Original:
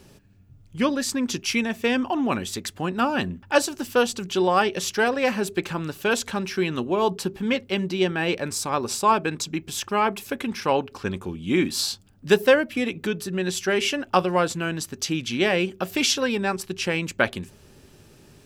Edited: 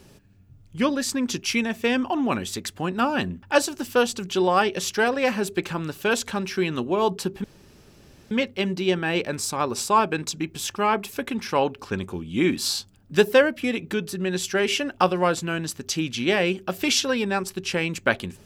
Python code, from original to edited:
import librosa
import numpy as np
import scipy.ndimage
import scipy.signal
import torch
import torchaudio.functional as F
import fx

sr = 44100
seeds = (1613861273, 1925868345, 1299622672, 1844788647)

y = fx.edit(x, sr, fx.insert_room_tone(at_s=7.44, length_s=0.87), tone=tone)